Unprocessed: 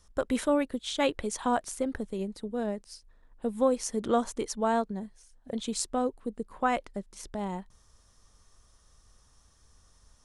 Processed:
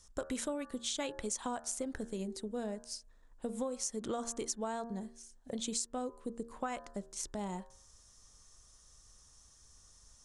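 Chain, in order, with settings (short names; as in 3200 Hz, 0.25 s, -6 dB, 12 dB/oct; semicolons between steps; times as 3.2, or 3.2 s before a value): bell 7000 Hz +11 dB 1.1 oct; de-hum 77.49 Hz, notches 23; compressor 10:1, threshold -30 dBFS, peak gain reduction 12 dB; gain -3.5 dB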